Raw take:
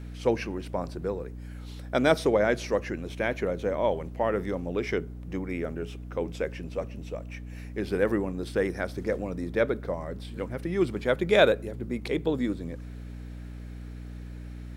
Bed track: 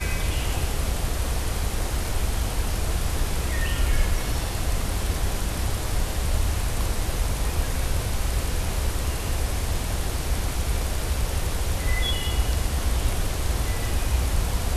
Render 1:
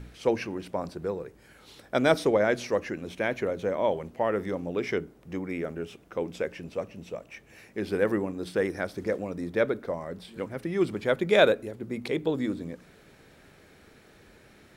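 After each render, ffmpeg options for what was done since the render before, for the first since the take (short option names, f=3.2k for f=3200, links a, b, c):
-af "bandreject=f=60:t=h:w=4,bandreject=f=120:t=h:w=4,bandreject=f=180:t=h:w=4,bandreject=f=240:t=h:w=4,bandreject=f=300:t=h:w=4"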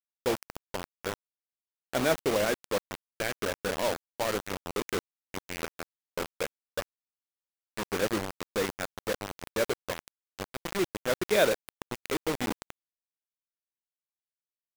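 -af "flanger=delay=0.9:depth=8.3:regen=-81:speed=1.7:shape=triangular,acrusher=bits=4:mix=0:aa=0.000001"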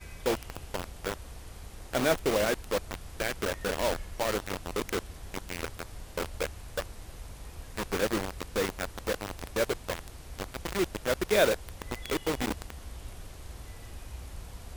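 -filter_complex "[1:a]volume=-19dB[a];[0:a][a]amix=inputs=2:normalize=0"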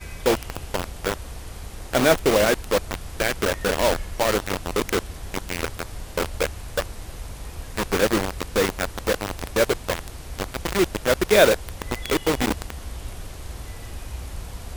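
-af "volume=8.5dB"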